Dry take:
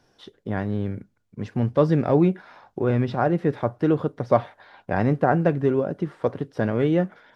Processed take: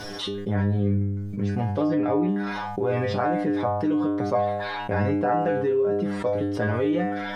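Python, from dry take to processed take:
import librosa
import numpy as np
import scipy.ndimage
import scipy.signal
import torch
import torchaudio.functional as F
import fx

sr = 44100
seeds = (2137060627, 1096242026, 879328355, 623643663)

y = fx.lowpass(x, sr, hz=fx.line((1.86, 3700.0), (2.27, 2700.0)), slope=12, at=(1.86, 2.27), fade=0.02)
y = fx.stiff_resonator(y, sr, f0_hz=99.0, decay_s=0.55, stiffness=0.002)
y = fx.env_flatten(y, sr, amount_pct=70)
y = y * librosa.db_to_amplitude(5.5)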